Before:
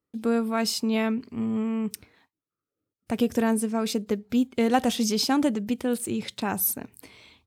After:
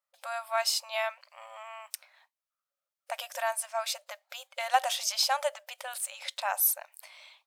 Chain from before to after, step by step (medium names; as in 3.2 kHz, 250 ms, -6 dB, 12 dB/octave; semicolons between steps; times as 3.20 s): brick-wall FIR high-pass 530 Hz